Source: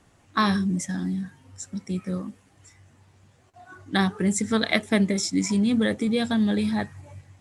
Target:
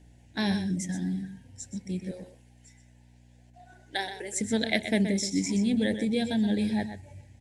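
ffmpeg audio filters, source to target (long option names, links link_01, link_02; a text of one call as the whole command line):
ffmpeg -i in.wav -filter_complex "[0:a]asettb=1/sr,asplit=3[link_01][link_02][link_03];[link_01]atrim=end=2.114[link_04];[link_02]atrim=start=2.11:end=4.41,asetpts=PTS-STARTPTS,afade=type=in:duration=0.004:curve=qsin,afade=type=out:start_time=2.296:duration=0.004:curve=qsin,highpass=frequency=430:width=0.5412,highpass=frequency=430:width=1.3066[link_05];[link_03]atrim=start=4.406[link_06];[link_04][link_05]acrossfade=duration=0.004:curve1=hsin:curve2=qsin[link_07];[link_07][link_06]acrossfade=duration=0.004:curve1=qsin:curve2=hsin,aeval=exprs='val(0)+0.00316*(sin(2*PI*60*n/s)+sin(2*PI*2*60*n/s)/2+sin(2*PI*3*60*n/s)/3+sin(2*PI*4*60*n/s)/4+sin(2*PI*5*60*n/s)/5)':channel_layout=same,asuperstop=centerf=1200:order=4:qfactor=1.6,aecho=1:1:125:0.335,volume=-4dB" out.wav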